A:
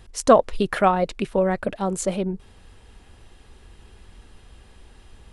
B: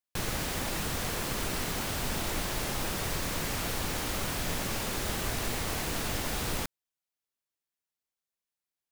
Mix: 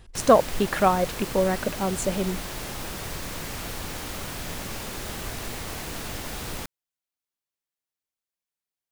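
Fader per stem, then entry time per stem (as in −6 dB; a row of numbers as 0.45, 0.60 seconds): −2.0, −1.5 decibels; 0.00, 0.00 seconds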